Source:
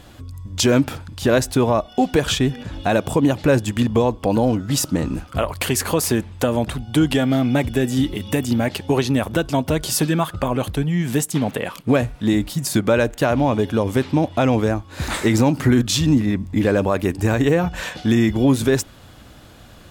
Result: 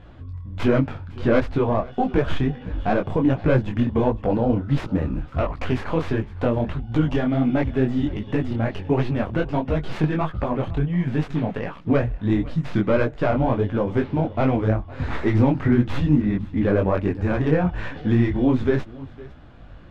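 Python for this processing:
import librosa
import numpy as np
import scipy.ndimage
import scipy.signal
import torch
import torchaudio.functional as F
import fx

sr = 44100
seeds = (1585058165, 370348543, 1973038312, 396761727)

p1 = fx.tracing_dist(x, sr, depth_ms=0.32)
p2 = scipy.signal.sosfilt(scipy.signal.butter(2, 2200.0, 'lowpass', fs=sr, output='sos'), p1)
p3 = fx.low_shelf(p2, sr, hz=74.0, db=10.0)
p4 = p3 + fx.echo_single(p3, sr, ms=508, db=-20.5, dry=0)
y = fx.detune_double(p4, sr, cents=50)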